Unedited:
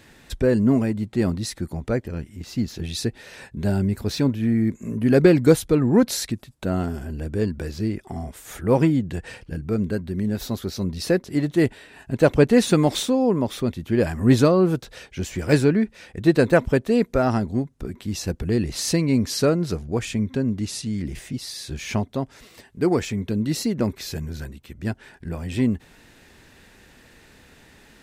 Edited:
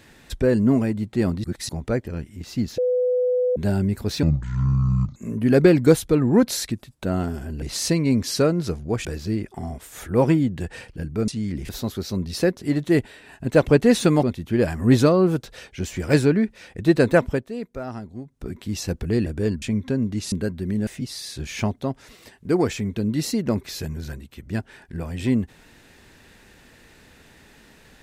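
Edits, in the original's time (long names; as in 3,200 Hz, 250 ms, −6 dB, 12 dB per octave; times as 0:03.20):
0:01.44–0:01.69: reverse
0:02.78–0:03.56: beep over 499 Hz −17.5 dBFS
0:04.23–0:04.76: play speed 57%
0:07.22–0:07.58: swap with 0:18.65–0:20.08
0:09.81–0:10.36: swap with 0:20.78–0:21.19
0:12.90–0:13.62: remove
0:16.61–0:17.89: duck −12 dB, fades 0.26 s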